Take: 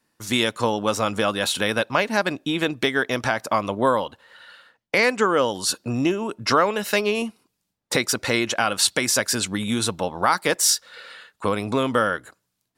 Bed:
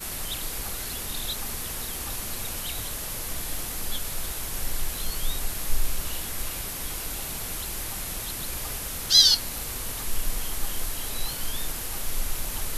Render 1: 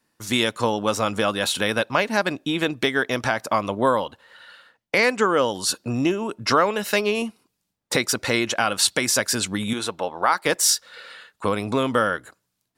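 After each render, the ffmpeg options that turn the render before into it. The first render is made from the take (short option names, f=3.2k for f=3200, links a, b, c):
-filter_complex "[0:a]asettb=1/sr,asplit=3[a][b][c];[a]atrim=end=9.734[d];[b]atrim=start=9.73:end=10.46,asetpts=PTS-STARTPTS,afade=t=in:d=0.004:c=qsin,afade=t=out:st=0.726:d=0.004:c=qsin,bass=f=250:g=-12,treble=f=4k:g=-7[e];[c]atrim=start=10.456[f];[d][e]acrossfade=d=0.004:c1=hsin:c2=qsin[g];[g][f]acrossfade=d=0.004:c1=qsin:c2=hsin"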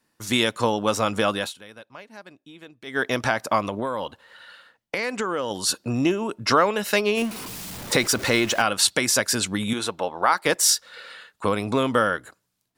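-filter_complex "[0:a]asettb=1/sr,asplit=3[a][b][c];[a]atrim=end=3.624[d];[b]atrim=start=3.62:end=5.51,asetpts=PTS-STARTPTS,afade=t=in:d=0.004:c=qsin,afade=t=out:st=1.886:d=0.004:c=qsin,acompressor=threshold=-22dB:ratio=6:attack=3.2:release=140:knee=1:detection=peak[e];[c]atrim=start=5.506[f];[d][e]acrossfade=d=0.004:c1=hsin:c2=qsin[g];[g][f]acrossfade=d=0.004:c1=qsin:c2=hsin,asettb=1/sr,asplit=3[h][i][j];[h]atrim=end=7.174[k];[i]atrim=start=7.17:end=8.62,asetpts=PTS-STARTPTS,afade=t=in:d=0.004:c=qsin,afade=t=out:st=1.446:d=0.004:c=qsin,aeval=exprs='val(0)+0.5*0.0335*sgn(val(0))':c=same[l];[j]atrim=start=8.616[m];[k][l]acrossfade=d=0.004:c1=hsin:c2=qsin[n];[n][m]acrossfade=d=0.004:c1=qsin:c2=hsin,asplit=3[o][p][q];[o]atrim=end=1.54,asetpts=PTS-STARTPTS,afade=t=out:st=1.35:d=0.19:silence=0.0841395[r];[p]atrim=start=1.54:end=2.85,asetpts=PTS-STARTPTS,volume=-21.5dB[s];[q]atrim=start=2.85,asetpts=PTS-STARTPTS,afade=t=in:d=0.19:silence=0.0841395[t];[r][s][t]concat=n=3:v=0:a=1"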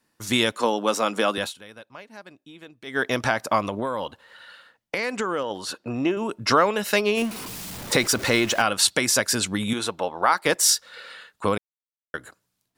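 -filter_complex "[0:a]asettb=1/sr,asplit=3[a][b][c];[a]atrim=end=0.524[d];[b]atrim=start=0.52:end=1.38,asetpts=PTS-STARTPTS,afade=t=in:d=0.004:c=qsin,afade=t=out:st=0.856:d=0.004:c=qsin,highpass=f=210:w=0.5412,highpass=f=210:w=1.3066[e];[c]atrim=start=1.376[f];[d][e]acrossfade=d=0.004:c1=hsin:c2=qsin[g];[g][f]acrossfade=d=0.004:c1=qsin:c2=hsin,asettb=1/sr,asplit=3[h][i][j];[h]atrim=end=5.434[k];[i]atrim=start=5.43:end=6.17,asetpts=PTS-STARTPTS,afade=t=in:d=0.004:c=qsin,afade=t=out:st=0.736:d=0.004:c=qsin,bass=f=250:g=-7,treble=f=4k:g=-13[l];[j]atrim=start=6.166[m];[k][l]acrossfade=d=0.004:c1=hsin:c2=qsin[n];[n][m]acrossfade=d=0.004:c1=qsin:c2=hsin,asplit=3[o][p][q];[o]atrim=end=11.58,asetpts=PTS-STARTPTS,afade=t=out:st=11.576:d=0.004:c=hsin[r];[p]atrim=start=11.58:end=12.14,asetpts=PTS-STARTPTS,volume=0[s];[q]atrim=start=12.14,asetpts=PTS-STARTPTS,afade=t=in:d=0.004:c=hsin[t];[r][s][t]concat=n=3:v=0:a=1"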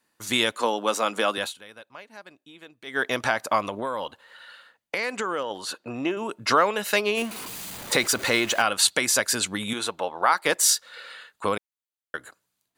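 -af "lowshelf=f=290:g=-9,bandreject=f=5.4k:w=9.8"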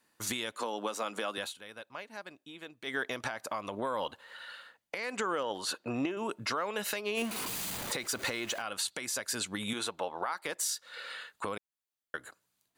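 -af "acompressor=threshold=-25dB:ratio=3,alimiter=limit=-22dB:level=0:latency=1:release=469"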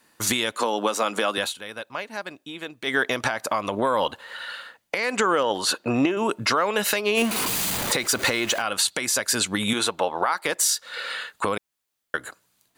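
-af "volume=11.5dB"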